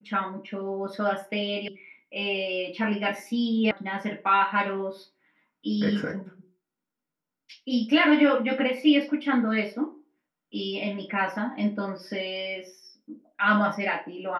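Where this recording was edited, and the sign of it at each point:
1.68 s: sound stops dead
3.71 s: sound stops dead

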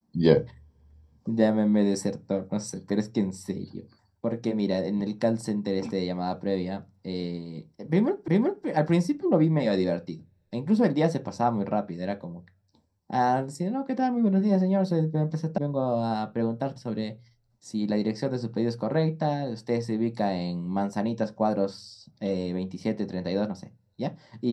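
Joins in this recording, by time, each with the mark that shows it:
8.28 s: repeat of the last 0.38 s
15.58 s: sound stops dead

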